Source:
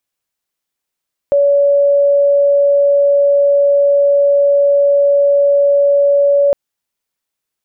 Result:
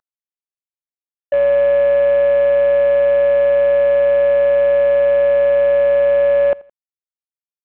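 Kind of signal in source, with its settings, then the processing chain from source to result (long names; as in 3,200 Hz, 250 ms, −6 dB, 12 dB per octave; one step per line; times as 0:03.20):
tone sine 567 Hz −7.5 dBFS 5.21 s
variable-slope delta modulation 16 kbit/s
low-shelf EQ 310 Hz −8.5 dB
repeating echo 83 ms, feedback 36%, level −24 dB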